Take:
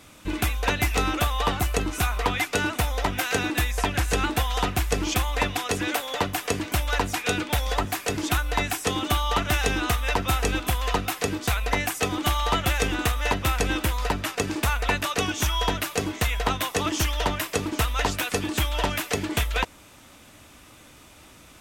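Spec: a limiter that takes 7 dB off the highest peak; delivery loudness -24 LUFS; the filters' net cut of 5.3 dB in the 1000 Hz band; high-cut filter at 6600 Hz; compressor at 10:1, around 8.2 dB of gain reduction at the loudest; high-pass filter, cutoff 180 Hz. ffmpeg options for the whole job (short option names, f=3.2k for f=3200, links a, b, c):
-af "highpass=180,lowpass=6.6k,equalizer=f=1k:t=o:g=-7,acompressor=threshold=-31dB:ratio=10,volume=12.5dB,alimiter=limit=-13dB:level=0:latency=1"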